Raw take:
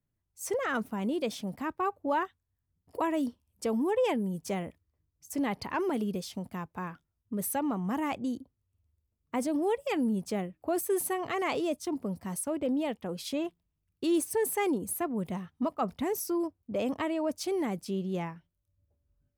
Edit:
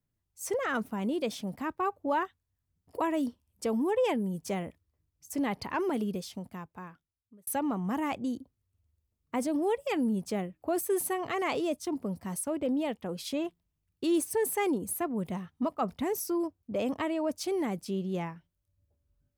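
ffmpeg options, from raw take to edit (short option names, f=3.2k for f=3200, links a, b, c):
-filter_complex "[0:a]asplit=2[a][b];[a]atrim=end=7.47,asetpts=PTS-STARTPTS,afade=t=out:st=6.03:d=1.44[c];[b]atrim=start=7.47,asetpts=PTS-STARTPTS,afade=t=in:d=0.004:c=hsin[d];[c][d]concat=n=2:v=0:a=1"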